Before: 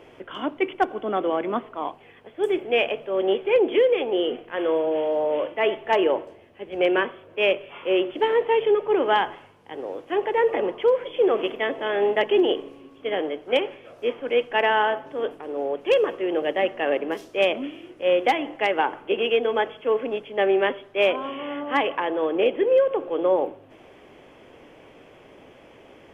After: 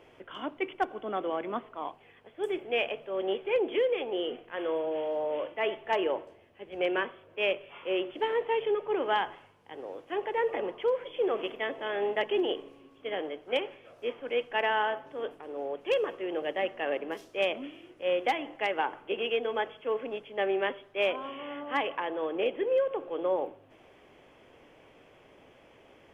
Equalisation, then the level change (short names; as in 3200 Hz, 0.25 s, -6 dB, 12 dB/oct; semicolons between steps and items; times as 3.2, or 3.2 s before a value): bell 290 Hz -3 dB 1.9 oct; -6.5 dB